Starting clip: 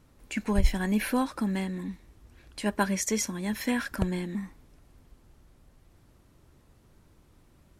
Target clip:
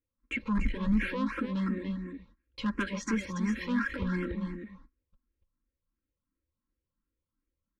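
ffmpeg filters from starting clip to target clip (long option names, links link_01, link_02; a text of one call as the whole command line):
ffmpeg -i in.wav -filter_complex "[0:a]agate=range=-33dB:threshold=-47dB:ratio=16:detection=peak,lowpass=2500,aecho=1:1:3.7:0.57,asplit=2[link_01][link_02];[link_02]acompressor=threshold=-35dB:ratio=6,volume=1dB[link_03];[link_01][link_03]amix=inputs=2:normalize=0,asoftclip=type=tanh:threshold=-21.5dB,asuperstop=centerf=710:order=8:qfactor=2.1,asplit=2[link_04][link_05];[link_05]aecho=0:1:287:0.473[link_06];[link_04][link_06]amix=inputs=2:normalize=0,asplit=2[link_07][link_08];[link_08]afreqshift=2.8[link_09];[link_07][link_09]amix=inputs=2:normalize=1" out.wav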